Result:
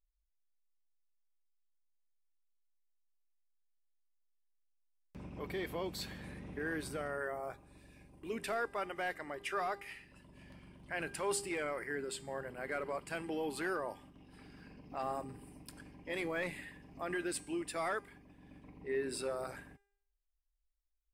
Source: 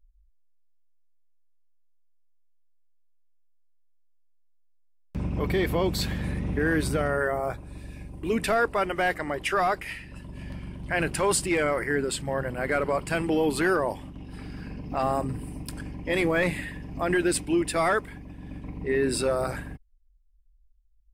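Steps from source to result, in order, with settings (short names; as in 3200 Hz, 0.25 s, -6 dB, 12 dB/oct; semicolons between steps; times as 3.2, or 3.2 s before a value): low shelf 160 Hz -11.5 dB; resonator 400 Hz, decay 0.68 s, mix 60%; gain -4.5 dB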